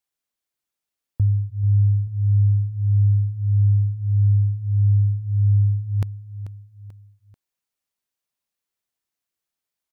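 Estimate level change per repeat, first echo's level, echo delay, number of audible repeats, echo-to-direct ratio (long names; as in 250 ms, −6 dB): −7.0 dB, −14.0 dB, 438 ms, 3, −13.0 dB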